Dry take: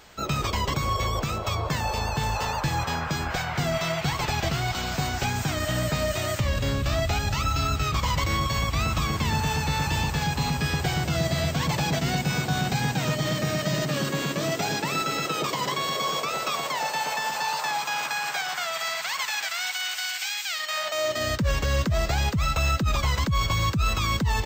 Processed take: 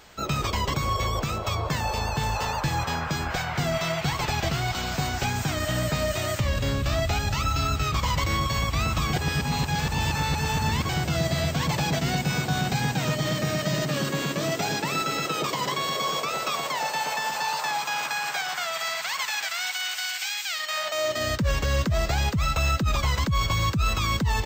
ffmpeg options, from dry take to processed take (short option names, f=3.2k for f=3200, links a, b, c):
-filter_complex "[0:a]asplit=3[a][b][c];[a]atrim=end=9.132[d];[b]atrim=start=9.128:end=10.892,asetpts=PTS-STARTPTS,areverse[e];[c]atrim=start=10.888[f];[d][e]acrossfade=d=0.004:c1=hsin:c2=hsin[g];[g][f]acrossfade=d=0.004:c1=hsin:c2=hsin"